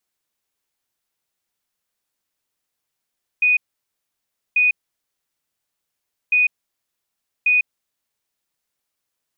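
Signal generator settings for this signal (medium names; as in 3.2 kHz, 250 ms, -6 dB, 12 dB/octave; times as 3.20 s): beep pattern sine 2.48 kHz, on 0.15 s, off 0.99 s, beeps 2, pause 1.61 s, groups 2, -12.5 dBFS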